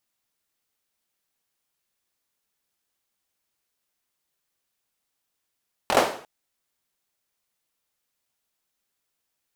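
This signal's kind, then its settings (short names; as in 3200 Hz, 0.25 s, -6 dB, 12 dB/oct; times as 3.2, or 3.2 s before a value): hand clap length 0.35 s, apart 23 ms, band 570 Hz, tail 0.49 s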